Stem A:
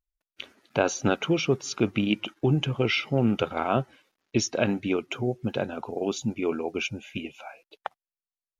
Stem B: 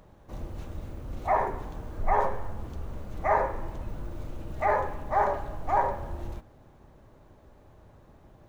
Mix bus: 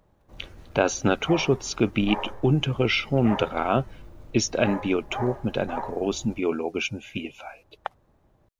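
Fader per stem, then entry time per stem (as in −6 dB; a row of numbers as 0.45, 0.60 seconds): +2.0, −8.5 decibels; 0.00, 0.00 seconds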